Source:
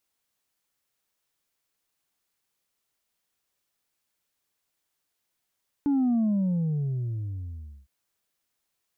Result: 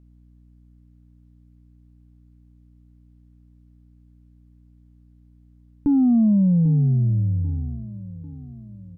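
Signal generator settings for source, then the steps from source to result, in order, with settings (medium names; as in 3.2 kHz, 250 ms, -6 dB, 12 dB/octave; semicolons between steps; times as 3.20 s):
sub drop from 290 Hz, over 2.01 s, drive 2 dB, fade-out 1.72 s, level -21 dB
tilt EQ -3.5 dB/octave; hum 60 Hz, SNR 27 dB; feedback delay 793 ms, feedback 51%, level -16.5 dB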